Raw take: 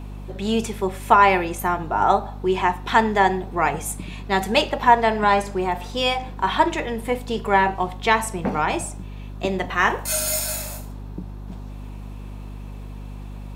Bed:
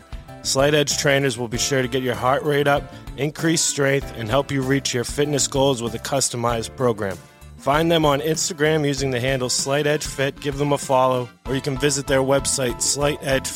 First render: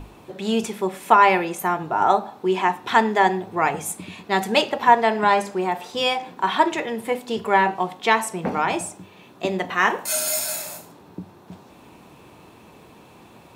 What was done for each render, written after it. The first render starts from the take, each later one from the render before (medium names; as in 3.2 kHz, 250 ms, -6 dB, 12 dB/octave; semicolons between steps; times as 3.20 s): hum notches 50/100/150/200/250 Hz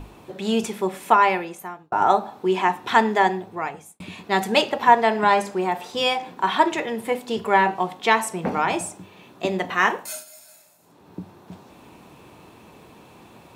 0.97–1.92 s: fade out; 3.13–4.00 s: fade out; 9.84–11.19 s: dip -22.5 dB, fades 0.41 s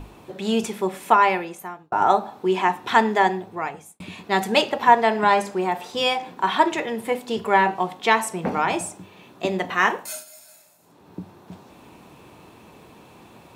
no audible change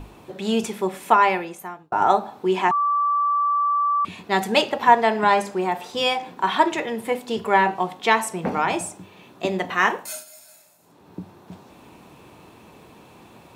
2.71–4.05 s: bleep 1.16 kHz -17.5 dBFS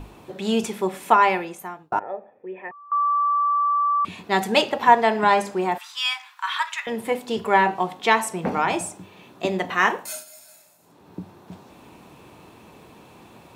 1.99–2.92 s: cascade formant filter e; 5.78–6.87 s: steep high-pass 1.1 kHz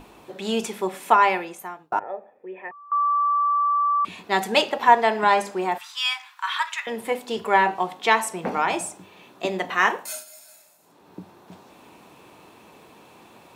bass shelf 190 Hz -10.5 dB; hum notches 50/100/150 Hz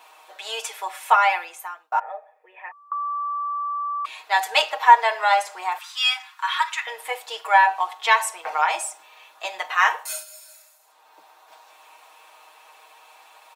high-pass 690 Hz 24 dB/octave; comb 6.4 ms, depth 79%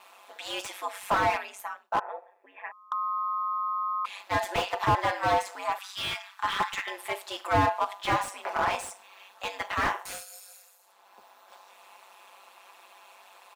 ring modulator 97 Hz; slew-rate limiter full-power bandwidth 95 Hz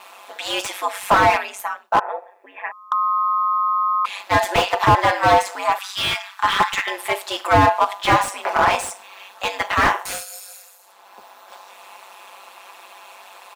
trim +10.5 dB; peak limiter -3 dBFS, peak gain reduction 2 dB